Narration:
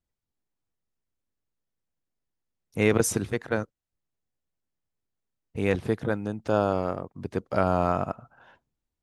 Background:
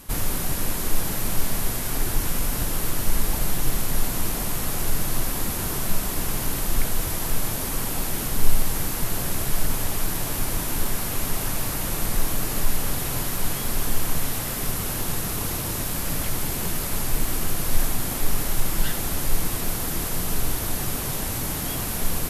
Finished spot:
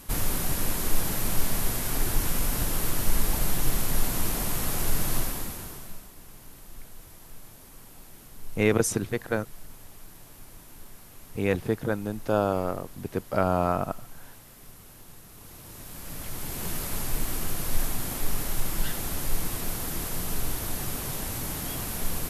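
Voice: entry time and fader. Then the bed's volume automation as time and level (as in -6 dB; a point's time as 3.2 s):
5.80 s, -0.5 dB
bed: 5.17 s -2 dB
6.13 s -22 dB
15.28 s -22 dB
16.72 s -5 dB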